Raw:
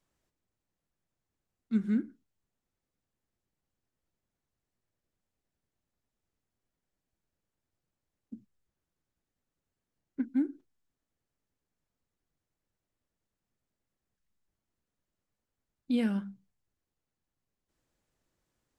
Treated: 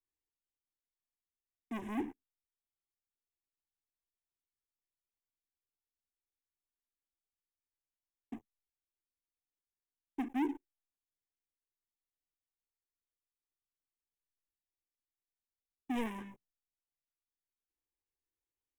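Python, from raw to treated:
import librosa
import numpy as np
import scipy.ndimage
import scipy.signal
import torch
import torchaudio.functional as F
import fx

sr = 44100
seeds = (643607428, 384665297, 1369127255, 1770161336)

y = fx.leveller(x, sr, passes=5)
y = fx.fixed_phaser(y, sr, hz=910.0, stages=8)
y = y * librosa.db_to_amplitude(-8.0)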